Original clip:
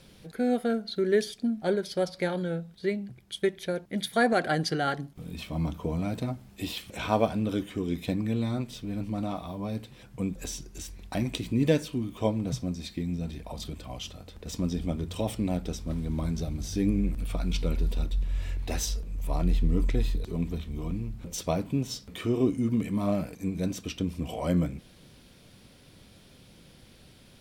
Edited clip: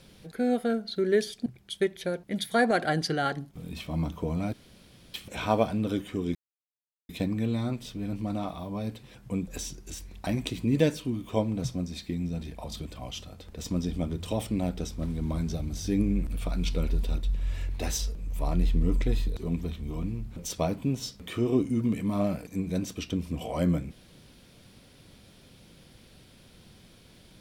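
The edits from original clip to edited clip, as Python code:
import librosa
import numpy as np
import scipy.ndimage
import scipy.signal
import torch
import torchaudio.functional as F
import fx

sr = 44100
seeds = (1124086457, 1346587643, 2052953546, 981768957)

y = fx.edit(x, sr, fx.cut(start_s=1.46, length_s=1.62),
    fx.room_tone_fill(start_s=6.15, length_s=0.61),
    fx.insert_silence(at_s=7.97, length_s=0.74), tone=tone)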